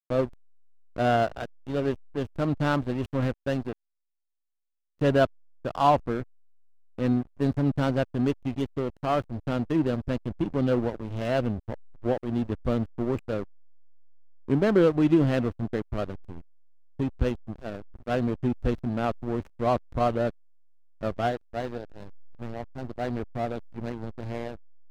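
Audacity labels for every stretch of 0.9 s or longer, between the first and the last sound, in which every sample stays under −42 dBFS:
3.730000	5.010000	silence
13.440000	14.480000	silence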